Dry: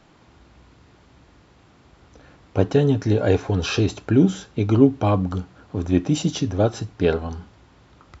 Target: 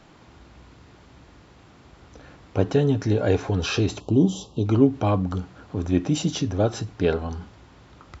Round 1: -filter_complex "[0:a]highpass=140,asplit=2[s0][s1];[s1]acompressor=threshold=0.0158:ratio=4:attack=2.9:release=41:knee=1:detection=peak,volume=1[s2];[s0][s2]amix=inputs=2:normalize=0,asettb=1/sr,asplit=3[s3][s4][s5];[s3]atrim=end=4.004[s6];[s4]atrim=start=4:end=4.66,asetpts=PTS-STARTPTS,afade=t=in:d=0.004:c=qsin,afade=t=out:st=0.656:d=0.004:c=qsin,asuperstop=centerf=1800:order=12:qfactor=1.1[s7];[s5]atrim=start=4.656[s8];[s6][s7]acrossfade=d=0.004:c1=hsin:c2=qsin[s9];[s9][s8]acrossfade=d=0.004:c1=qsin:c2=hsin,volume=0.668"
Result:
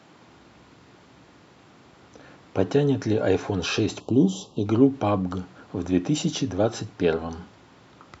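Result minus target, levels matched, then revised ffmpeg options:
125 Hz band -3.5 dB
-filter_complex "[0:a]asplit=2[s0][s1];[s1]acompressor=threshold=0.0158:ratio=4:attack=2.9:release=41:knee=1:detection=peak,volume=1[s2];[s0][s2]amix=inputs=2:normalize=0,asettb=1/sr,asplit=3[s3][s4][s5];[s3]atrim=end=4.004[s6];[s4]atrim=start=4:end=4.66,asetpts=PTS-STARTPTS,afade=t=in:d=0.004:c=qsin,afade=t=out:st=0.656:d=0.004:c=qsin,asuperstop=centerf=1800:order=12:qfactor=1.1[s7];[s5]atrim=start=4.656[s8];[s6][s7]acrossfade=d=0.004:c1=hsin:c2=qsin[s9];[s9][s8]acrossfade=d=0.004:c1=qsin:c2=hsin,volume=0.668"

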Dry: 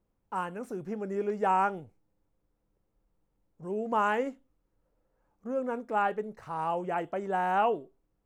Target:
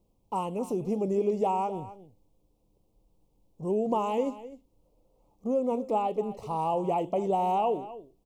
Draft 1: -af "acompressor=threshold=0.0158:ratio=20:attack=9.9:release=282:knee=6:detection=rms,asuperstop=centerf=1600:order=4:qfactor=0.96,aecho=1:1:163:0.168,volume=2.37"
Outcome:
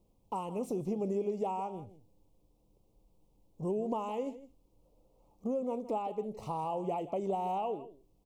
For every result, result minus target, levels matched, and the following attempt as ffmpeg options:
compression: peak gain reduction +8 dB; echo 94 ms early
-af "acompressor=threshold=0.0422:ratio=20:attack=9.9:release=282:knee=6:detection=rms,asuperstop=centerf=1600:order=4:qfactor=0.96,aecho=1:1:163:0.168,volume=2.37"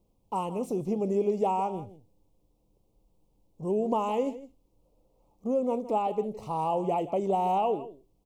echo 94 ms early
-af "acompressor=threshold=0.0422:ratio=20:attack=9.9:release=282:knee=6:detection=rms,asuperstop=centerf=1600:order=4:qfactor=0.96,aecho=1:1:257:0.168,volume=2.37"

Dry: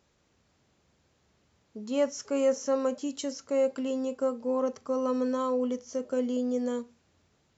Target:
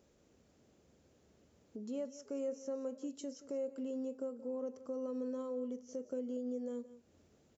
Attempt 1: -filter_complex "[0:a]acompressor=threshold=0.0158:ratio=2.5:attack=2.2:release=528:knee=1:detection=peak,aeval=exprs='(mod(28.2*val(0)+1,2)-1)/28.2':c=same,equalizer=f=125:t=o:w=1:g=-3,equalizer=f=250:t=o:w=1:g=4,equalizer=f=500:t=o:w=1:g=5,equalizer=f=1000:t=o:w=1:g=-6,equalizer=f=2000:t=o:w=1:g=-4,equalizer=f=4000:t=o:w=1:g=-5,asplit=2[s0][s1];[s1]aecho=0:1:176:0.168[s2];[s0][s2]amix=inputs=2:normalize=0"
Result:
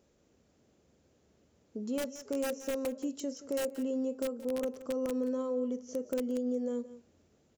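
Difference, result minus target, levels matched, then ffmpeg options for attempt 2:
compression: peak gain reduction -7 dB
-filter_complex "[0:a]acompressor=threshold=0.00422:ratio=2.5:attack=2.2:release=528:knee=1:detection=peak,aeval=exprs='(mod(28.2*val(0)+1,2)-1)/28.2':c=same,equalizer=f=125:t=o:w=1:g=-3,equalizer=f=250:t=o:w=1:g=4,equalizer=f=500:t=o:w=1:g=5,equalizer=f=1000:t=o:w=1:g=-6,equalizer=f=2000:t=o:w=1:g=-4,equalizer=f=4000:t=o:w=1:g=-5,asplit=2[s0][s1];[s1]aecho=0:1:176:0.168[s2];[s0][s2]amix=inputs=2:normalize=0"

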